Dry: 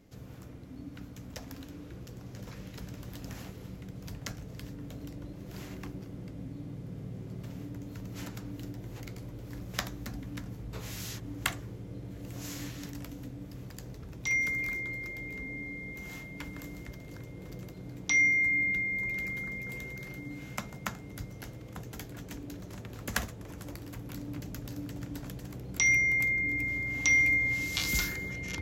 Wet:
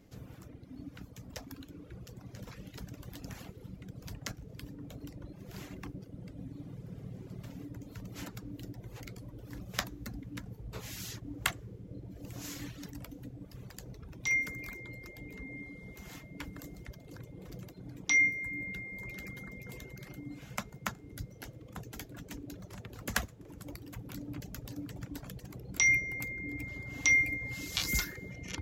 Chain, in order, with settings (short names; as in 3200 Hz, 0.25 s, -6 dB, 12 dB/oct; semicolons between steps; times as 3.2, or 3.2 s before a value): reverb removal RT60 1.6 s